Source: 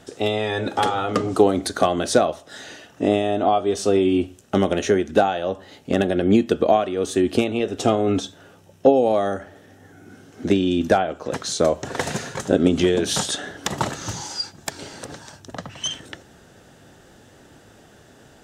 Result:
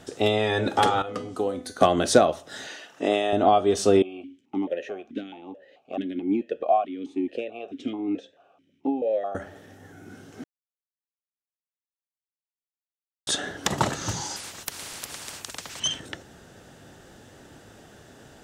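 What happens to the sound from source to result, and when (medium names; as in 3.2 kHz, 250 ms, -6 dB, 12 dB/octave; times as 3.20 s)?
1.02–1.81 s: feedback comb 250 Hz, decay 0.43 s, mix 80%
2.67–3.33 s: frequency weighting A
4.02–9.35 s: stepped vowel filter 4.6 Hz
10.44–13.27 s: mute
14.36–15.80 s: spectrum-flattening compressor 10:1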